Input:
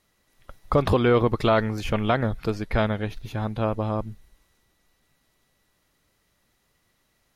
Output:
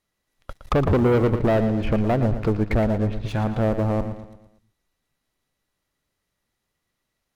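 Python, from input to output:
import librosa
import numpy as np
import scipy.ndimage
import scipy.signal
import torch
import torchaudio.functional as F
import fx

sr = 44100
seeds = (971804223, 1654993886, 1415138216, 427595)

y = fx.env_lowpass_down(x, sr, base_hz=680.0, full_db=-21.5)
y = fx.leveller(y, sr, passes=3)
y = fx.echo_feedback(y, sr, ms=115, feedback_pct=45, wet_db=-10.5)
y = y * librosa.db_to_amplitude(-4.0)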